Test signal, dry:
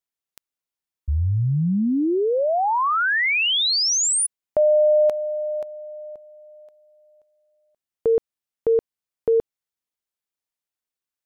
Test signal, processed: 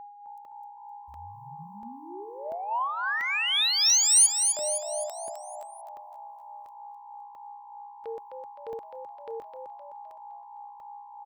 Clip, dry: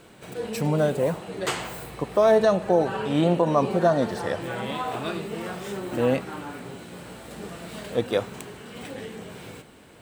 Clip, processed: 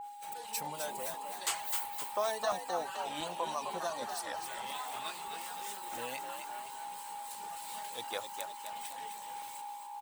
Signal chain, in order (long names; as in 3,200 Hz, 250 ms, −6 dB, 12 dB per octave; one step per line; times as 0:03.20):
downward expander −46 dBFS, range −25 dB
first-order pre-emphasis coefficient 0.97
hum removal 142.4 Hz, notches 10
reverb reduction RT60 0.69 s
parametric band 900 Hz +8.5 dB 0.7 octaves
steady tone 820 Hz −45 dBFS
in parallel at −4 dB: soft clipping −26 dBFS
on the sum: two-band tremolo in antiphase 3.2 Hz, depth 50%, crossover 2,400 Hz
on a send: echo with shifted repeats 258 ms, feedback 51%, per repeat +62 Hz, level −6.5 dB
on the sum: regular buffer underruns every 0.69 s, samples 64, zero, from 0:00.45